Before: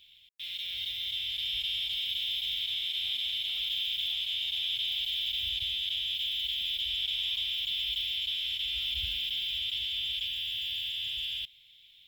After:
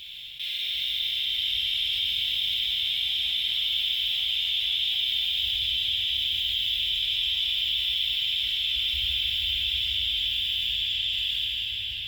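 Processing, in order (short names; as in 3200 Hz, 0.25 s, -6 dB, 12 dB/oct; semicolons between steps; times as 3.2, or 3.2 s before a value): 10.67–11.13 steep low-pass 8800 Hz; reverb RT60 5.6 s, pre-delay 12 ms, DRR -4 dB; fast leveller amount 50%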